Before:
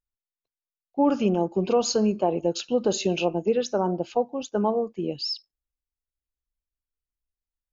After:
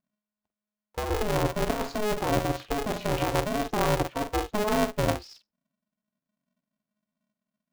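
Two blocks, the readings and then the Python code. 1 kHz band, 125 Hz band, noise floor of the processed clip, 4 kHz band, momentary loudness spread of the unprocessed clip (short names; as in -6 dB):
+0.5 dB, +3.0 dB, under -85 dBFS, -3.5 dB, 7 LU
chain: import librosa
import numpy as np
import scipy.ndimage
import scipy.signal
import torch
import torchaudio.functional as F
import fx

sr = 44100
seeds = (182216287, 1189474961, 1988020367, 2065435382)

y = scipy.signal.sosfilt(scipy.signal.butter(2, 1400.0, 'lowpass', fs=sr, output='sos'), x)
y = fx.over_compress(y, sr, threshold_db=-26.0, ratio=-1.0)
y = fx.doubler(y, sr, ms=47.0, db=-8)
y = y * np.sign(np.sin(2.0 * np.pi * 210.0 * np.arange(len(y)) / sr))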